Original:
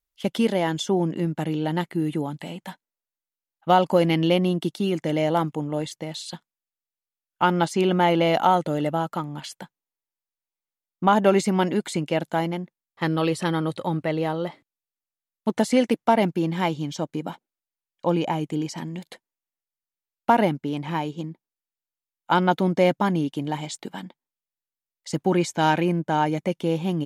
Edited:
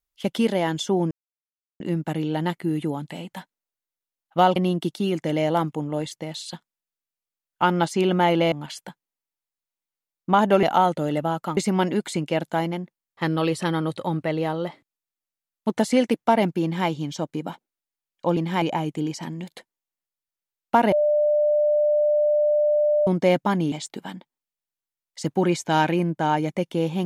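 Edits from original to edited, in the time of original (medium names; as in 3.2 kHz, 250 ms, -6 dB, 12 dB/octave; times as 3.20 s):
1.11 s: insert silence 0.69 s
3.87–4.36 s: delete
8.32–9.26 s: move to 11.37 s
16.43–16.68 s: copy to 18.17 s
20.47–22.62 s: bleep 596 Hz -16.5 dBFS
23.27–23.61 s: delete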